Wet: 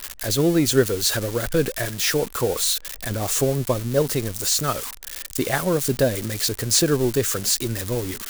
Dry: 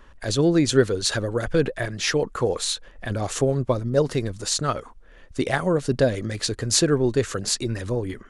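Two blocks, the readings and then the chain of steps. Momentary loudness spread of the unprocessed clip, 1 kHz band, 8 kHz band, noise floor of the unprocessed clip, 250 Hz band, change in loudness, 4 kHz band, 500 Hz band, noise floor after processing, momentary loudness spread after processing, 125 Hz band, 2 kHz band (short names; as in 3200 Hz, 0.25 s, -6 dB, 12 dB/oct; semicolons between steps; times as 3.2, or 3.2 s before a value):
8 LU, +0.5 dB, +4.5 dB, -48 dBFS, 0.0 dB, +1.5 dB, +2.5 dB, 0.0 dB, -40 dBFS, 8 LU, 0.0 dB, +1.0 dB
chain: switching spikes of -18.5 dBFS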